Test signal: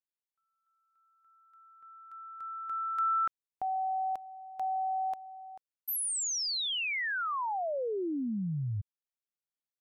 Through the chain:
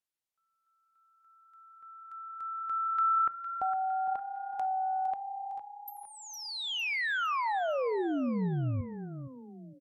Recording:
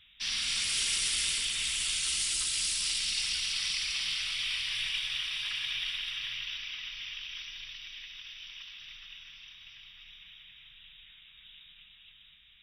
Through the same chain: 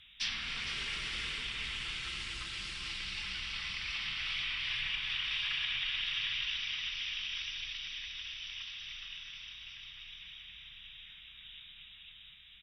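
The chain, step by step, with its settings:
treble cut that deepens with the level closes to 2,000 Hz, closed at −29 dBFS
on a send: echo with shifted repeats 458 ms, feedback 42%, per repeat +32 Hz, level −10.5 dB
on the sum: coupled-rooms reverb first 0.49 s, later 1.8 s, from −24 dB, DRR 16.5 dB
level +2 dB

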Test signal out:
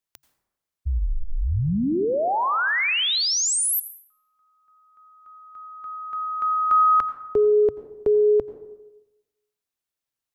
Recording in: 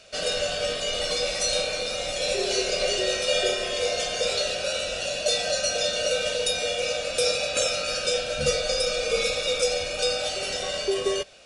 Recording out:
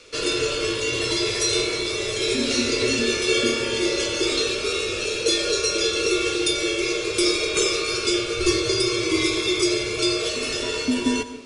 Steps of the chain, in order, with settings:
dense smooth reverb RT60 1 s, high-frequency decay 0.5×, pre-delay 75 ms, DRR 11.5 dB
frequency shifter −140 Hz
level +3 dB

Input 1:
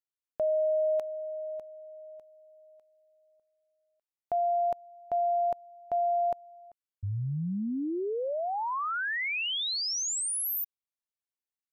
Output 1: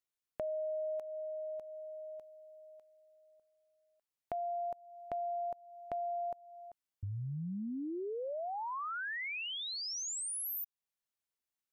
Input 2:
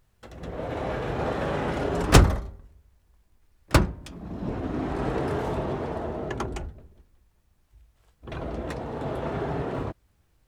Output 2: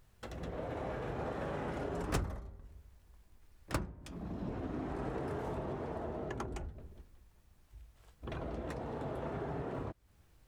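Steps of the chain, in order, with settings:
dynamic equaliser 3,700 Hz, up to −4 dB, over −47 dBFS, Q 0.97
downward compressor 2.5 to 1, threshold −43 dBFS
level +1 dB

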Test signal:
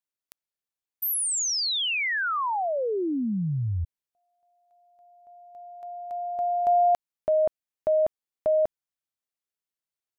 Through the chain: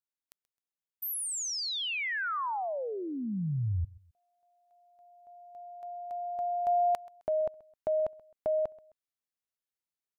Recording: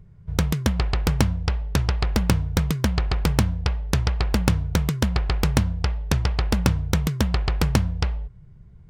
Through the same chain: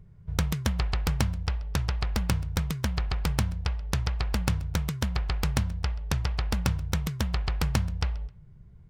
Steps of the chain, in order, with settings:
dynamic equaliser 330 Hz, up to −6 dB, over −38 dBFS, Q 0.84
speech leveller within 3 dB 2 s
repeating echo 131 ms, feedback 33%, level −22 dB
level −5 dB

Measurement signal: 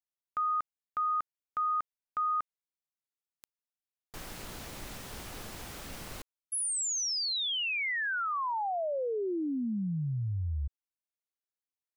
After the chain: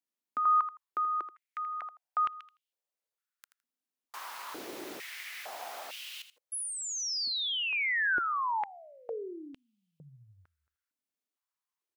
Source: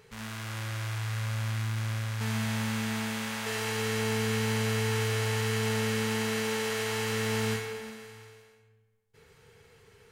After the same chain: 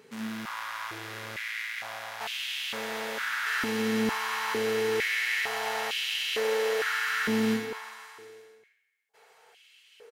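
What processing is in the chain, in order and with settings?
repeating echo 81 ms, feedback 16%, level −12.5 dB
dynamic equaliser 8,100 Hz, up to −6 dB, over −54 dBFS, Q 1.3
high-pass on a step sequencer 2.2 Hz 250–2,900 Hz

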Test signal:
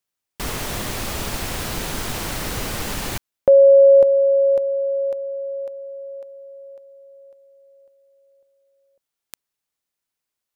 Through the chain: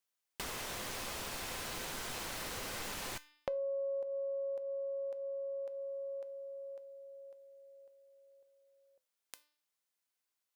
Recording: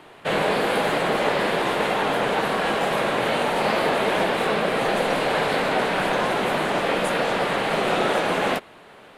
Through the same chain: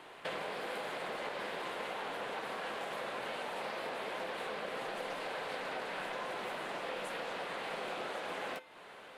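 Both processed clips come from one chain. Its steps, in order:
low-shelf EQ 280 Hz −10.5 dB
hum removal 298.3 Hz, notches 18
downward compressor 5 to 1, threshold −35 dBFS
tuned comb filter 510 Hz, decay 0.3 s, harmonics all, mix 60%
highs frequency-modulated by the lows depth 0.18 ms
level +3.5 dB

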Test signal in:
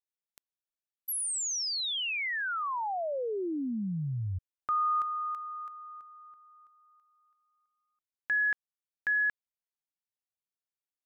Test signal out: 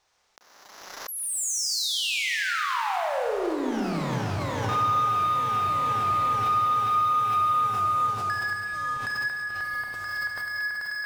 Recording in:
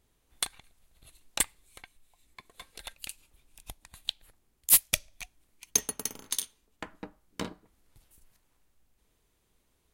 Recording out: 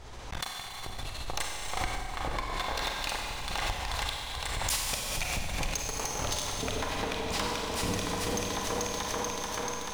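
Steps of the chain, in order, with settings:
drawn EQ curve 100 Hz 0 dB, 200 Hz −9 dB, 860 Hz +5 dB, 2,900 Hz −3 dB, 5,800 Hz −1 dB, 12,000 Hz −22 dB
echo whose low-pass opens from repeat to repeat 436 ms, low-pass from 200 Hz, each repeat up 1 octave, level −3 dB
downward compressor 16 to 1, threshold −43 dBFS
leveller curve on the samples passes 5
pitch vibrato 15 Hz 8.6 cents
four-comb reverb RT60 2.6 s, combs from 31 ms, DRR −1.5 dB
background raised ahead of every attack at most 34 dB per second
level −1.5 dB

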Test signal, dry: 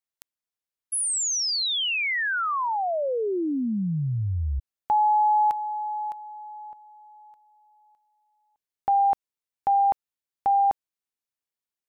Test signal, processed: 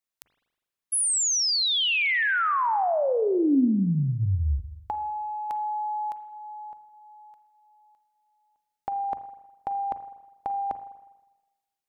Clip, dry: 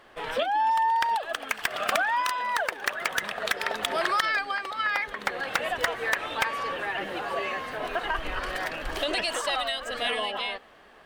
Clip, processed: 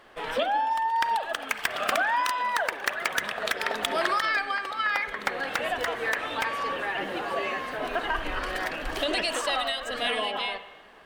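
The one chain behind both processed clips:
mains-hum notches 60/120 Hz
compressor whose output falls as the input rises −24 dBFS, ratio −0.5
spring reverb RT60 1.1 s, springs 40/51 ms, chirp 65 ms, DRR 11 dB
dynamic equaliser 270 Hz, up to +5 dB, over −48 dBFS, Q 3.3

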